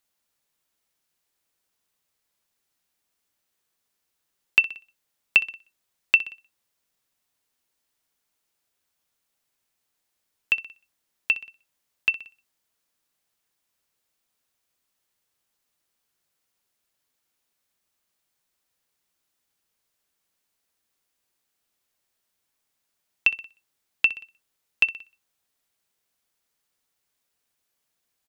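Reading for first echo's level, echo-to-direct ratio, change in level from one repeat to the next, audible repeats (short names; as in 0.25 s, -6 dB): -16.5 dB, -15.5 dB, -5.5 dB, 2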